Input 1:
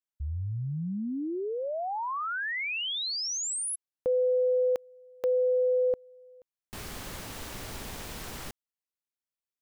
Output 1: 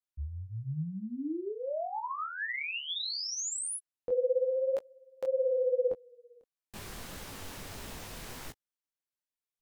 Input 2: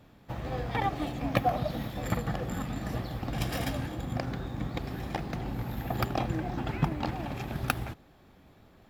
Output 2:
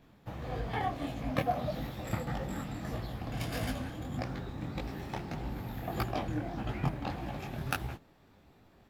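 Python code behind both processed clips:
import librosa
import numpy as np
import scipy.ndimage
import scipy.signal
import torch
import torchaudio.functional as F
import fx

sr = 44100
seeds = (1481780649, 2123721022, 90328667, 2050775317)

y = fx.wow_flutter(x, sr, seeds[0], rate_hz=0.36, depth_cents=84.0)
y = fx.detune_double(y, sr, cents=57)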